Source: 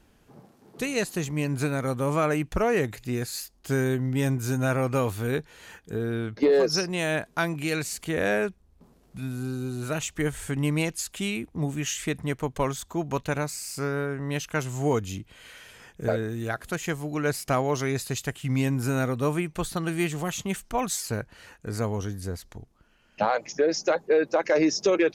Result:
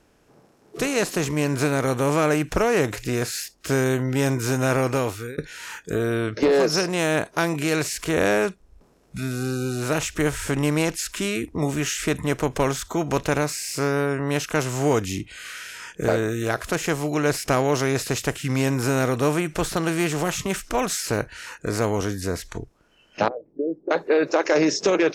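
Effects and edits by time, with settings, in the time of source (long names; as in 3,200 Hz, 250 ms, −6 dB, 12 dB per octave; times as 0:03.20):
0:04.78–0:05.38: fade out
0:23.28–0:23.91: transistor ladder low-pass 410 Hz, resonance 30%
whole clip: compressor on every frequency bin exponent 0.6; noise reduction from a noise print of the clip's start 19 dB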